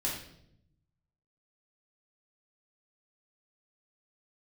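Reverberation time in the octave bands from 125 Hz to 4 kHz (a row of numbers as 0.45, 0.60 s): 1.5, 1.1, 0.85, 0.60, 0.60, 0.60 s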